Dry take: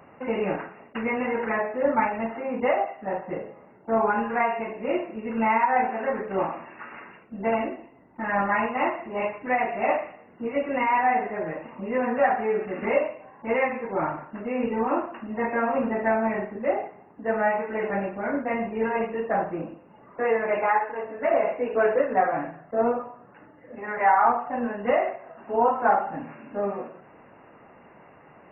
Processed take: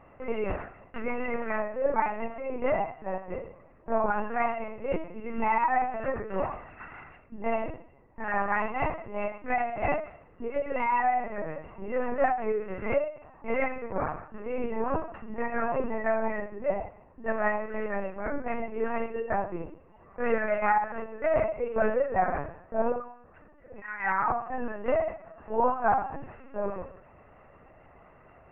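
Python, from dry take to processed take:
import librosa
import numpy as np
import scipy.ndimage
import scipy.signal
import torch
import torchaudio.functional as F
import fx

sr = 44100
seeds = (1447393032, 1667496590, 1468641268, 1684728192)

y = fx.dynamic_eq(x, sr, hz=1600.0, q=1.3, threshold_db=-39.0, ratio=4.0, max_db=5, at=(20.25, 21.43), fade=0.02)
y = fx.highpass(y, sr, hz=1000.0, slope=24, at=(23.8, 24.28), fade=0.02)
y = fx.lpc_vocoder(y, sr, seeds[0], excitation='pitch_kept', order=8)
y = F.gain(torch.from_numpy(y), -3.5).numpy()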